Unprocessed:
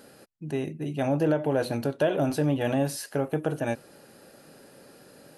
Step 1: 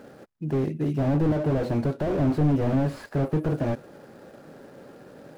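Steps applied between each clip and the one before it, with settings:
running median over 15 samples
slew-rate limiting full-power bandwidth 14 Hz
level +6.5 dB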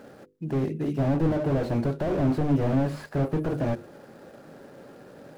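mains-hum notches 50/100/150/200/250/300/350/400/450/500 Hz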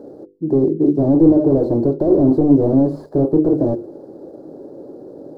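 drawn EQ curve 220 Hz 0 dB, 320 Hz +14 dB, 970 Hz −4 dB, 1,400 Hz −16 dB, 2,600 Hz −29 dB, 4,200 Hz −10 dB, 7,500 Hz −13 dB
level +4 dB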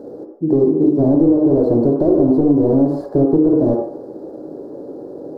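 on a send at −3.5 dB: convolution reverb, pre-delay 47 ms
on the sum: downward compressor, threshold −12 dBFS, peak gain reduction 8.5 dB
level +2.5 dB

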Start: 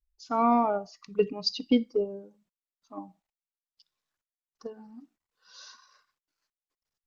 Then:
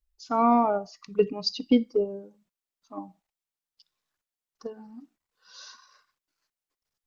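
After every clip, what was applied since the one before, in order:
dynamic equaliser 3,300 Hz, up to −3 dB, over −41 dBFS, Q 0.74
level +2.5 dB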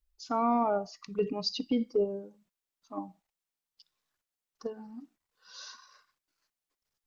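brickwall limiter −19.5 dBFS, peak gain reduction 9.5 dB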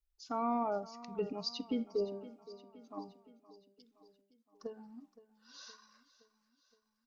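repeating echo 518 ms, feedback 57%, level −17.5 dB
level −6.5 dB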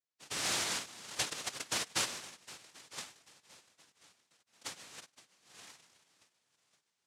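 cochlear-implant simulation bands 1
level −1 dB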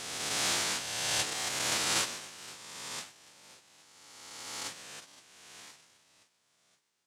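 peak hold with a rise ahead of every peak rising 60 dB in 2.00 s

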